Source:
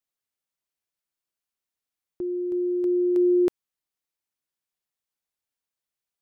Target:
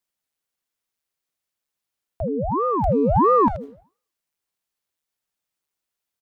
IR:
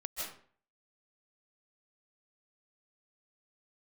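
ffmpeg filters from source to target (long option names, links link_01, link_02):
-filter_complex "[0:a]asplit=2[link_01][link_02];[link_02]adelay=80,highpass=300,lowpass=3400,asoftclip=type=hard:threshold=-25dB,volume=-11dB[link_03];[link_01][link_03]amix=inputs=2:normalize=0,asplit=2[link_04][link_05];[1:a]atrim=start_sample=2205[link_06];[link_05][link_06]afir=irnorm=-1:irlink=0,volume=-20dB[link_07];[link_04][link_07]amix=inputs=2:normalize=0,aeval=exprs='val(0)*sin(2*PI*470*n/s+470*0.85/1.5*sin(2*PI*1.5*n/s))':channel_layout=same,volume=6.5dB"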